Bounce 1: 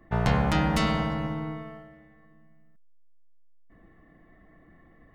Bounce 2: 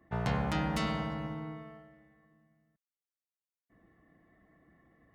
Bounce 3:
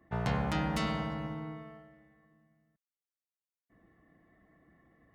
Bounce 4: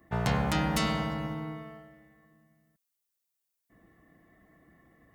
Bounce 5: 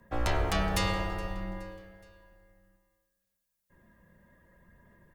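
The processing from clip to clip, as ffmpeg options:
ffmpeg -i in.wav -af "highpass=62,volume=-7.5dB" out.wav
ffmpeg -i in.wav -af anull out.wav
ffmpeg -i in.wav -af "crystalizer=i=1.5:c=0,volume=3.5dB" out.wav
ffmpeg -i in.wav -af "aphaser=in_gain=1:out_gain=1:delay=3.2:decay=0.23:speed=0.61:type=sinusoidal,afreqshift=-120,aecho=1:1:420|840|1260:0.0841|0.0412|0.0202" out.wav

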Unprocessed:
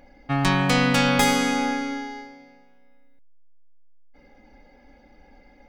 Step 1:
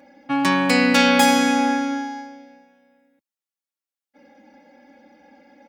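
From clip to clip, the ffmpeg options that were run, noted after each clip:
ffmpeg -i in.wav -af "highpass=frequency=120:width=0.5412,highpass=frequency=120:width=1.3066,aecho=1:1:3.6:0.89" out.wav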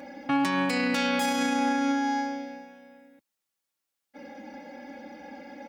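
ffmpeg -i in.wav -af "acompressor=threshold=-32dB:ratio=2,alimiter=level_in=1dB:limit=-24dB:level=0:latency=1:release=93,volume=-1dB,volume=7.5dB" out.wav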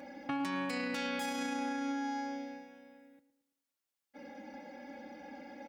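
ffmpeg -i in.wav -filter_complex "[0:a]acompressor=threshold=-29dB:ratio=3,asplit=2[link_01][link_02];[link_02]adelay=111,lowpass=frequency=2000:poles=1,volume=-13dB,asplit=2[link_03][link_04];[link_04]adelay=111,lowpass=frequency=2000:poles=1,volume=0.46,asplit=2[link_05][link_06];[link_06]adelay=111,lowpass=frequency=2000:poles=1,volume=0.46,asplit=2[link_07][link_08];[link_08]adelay=111,lowpass=frequency=2000:poles=1,volume=0.46,asplit=2[link_09][link_10];[link_10]adelay=111,lowpass=frequency=2000:poles=1,volume=0.46[link_11];[link_01][link_03][link_05][link_07][link_09][link_11]amix=inputs=6:normalize=0,volume=-5.5dB" out.wav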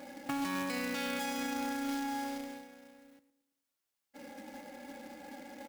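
ffmpeg -i in.wav -af "acrusher=bits=2:mode=log:mix=0:aa=0.000001" out.wav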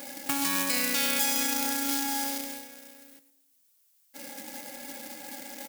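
ffmpeg -i in.wav -af "crystalizer=i=5.5:c=0,volume=1.5dB" out.wav

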